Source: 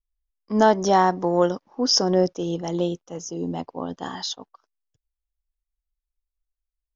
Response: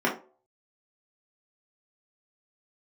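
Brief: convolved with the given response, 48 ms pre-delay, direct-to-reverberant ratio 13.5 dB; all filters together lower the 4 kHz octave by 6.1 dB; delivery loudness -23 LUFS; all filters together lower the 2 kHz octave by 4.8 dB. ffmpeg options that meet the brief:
-filter_complex "[0:a]equalizer=f=2000:t=o:g=-5,equalizer=f=4000:t=o:g=-8.5,asplit=2[s0][s1];[1:a]atrim=start_sample=2205,adelay=48[s2];[s1][s2]afir=irnorm=-1:irlink=0,volume=0.0422[s3];[s0][s3]amix=inputs=2:normalize=0"

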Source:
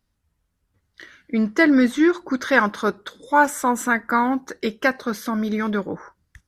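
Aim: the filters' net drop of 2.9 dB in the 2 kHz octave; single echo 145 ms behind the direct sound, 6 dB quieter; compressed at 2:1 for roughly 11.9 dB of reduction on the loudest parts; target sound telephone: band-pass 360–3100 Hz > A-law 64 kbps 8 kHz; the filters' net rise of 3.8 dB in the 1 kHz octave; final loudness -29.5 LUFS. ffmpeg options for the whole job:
-af "equalizer=f=1000:t=o:g=6,equalizer=f=2000:t=o:g=-6.5,acompressor=threshold=0.0282:ratio=2,highpass=360,lowpass=3100,aecho=1:1:145:0.501,volume=1.12" -ar 8000 -c:a pcm_alaw

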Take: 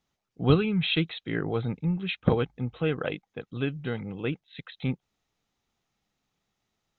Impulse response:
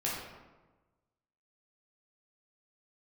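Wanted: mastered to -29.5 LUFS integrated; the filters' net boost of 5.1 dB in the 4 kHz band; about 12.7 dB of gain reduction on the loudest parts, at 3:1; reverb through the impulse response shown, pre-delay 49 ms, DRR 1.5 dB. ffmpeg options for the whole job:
-filter_complex "[0:a]equalizer=f=4000:t=o:g=6.5,acompressor=threshold=0.0224:ratio=3,asplit=2[s0][s1];[1:a]atrim=start_sample=2205,adelay=49[s2];[s1][s2]afir=irnorm=-1:irlink=0,volume=0.422[s3];[s0][s3]amix=inputs=2:normalize=0,volume=1.68"

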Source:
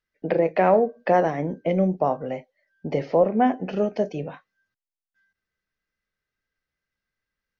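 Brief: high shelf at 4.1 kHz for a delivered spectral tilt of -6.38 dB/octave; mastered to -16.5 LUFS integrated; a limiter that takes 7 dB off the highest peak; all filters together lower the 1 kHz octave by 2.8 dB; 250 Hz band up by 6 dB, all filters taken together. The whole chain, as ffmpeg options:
-af "equalizer=f=250:t=o:g=8,equalizer=f=1000:t=o:g=-5,highshelf=f=4100:g=-9,volume=2.66,alimiter=limit=0.562:level=0:latency=1"

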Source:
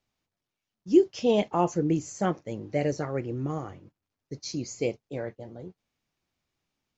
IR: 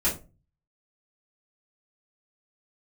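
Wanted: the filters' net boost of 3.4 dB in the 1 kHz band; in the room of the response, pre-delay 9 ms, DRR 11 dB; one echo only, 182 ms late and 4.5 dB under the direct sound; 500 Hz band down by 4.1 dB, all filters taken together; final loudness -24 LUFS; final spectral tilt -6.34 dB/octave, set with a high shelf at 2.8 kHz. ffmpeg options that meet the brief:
-filter_complex "[0:a]equalizer=f=500:t=o:g=-7.5,equalizer=f=1000:t=o:g=8,highshelf=f=2800:g=-4,aecho=1:1:182:0.596,asplit=2[s0][s1];[1:a]atrim=start_sample=2205,adelay=9[s2];[s1][s2]afir=irnorm=-1:irlink=0,volume=0.0841[s3];[s0][s3]amix=inputs=2:normalize=0,volume=1.58"

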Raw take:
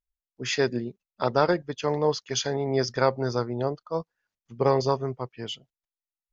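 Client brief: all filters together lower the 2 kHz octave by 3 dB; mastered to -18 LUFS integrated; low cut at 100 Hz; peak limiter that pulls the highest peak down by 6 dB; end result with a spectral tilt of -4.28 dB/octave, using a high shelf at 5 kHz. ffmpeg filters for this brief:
-af "highpass=100,equalizer=f=2000:t=o:g=-5.5,highshelf=f=5000:g=8.5,volume=3.35,alimiter=limit=0.631:level=0:latency=1"

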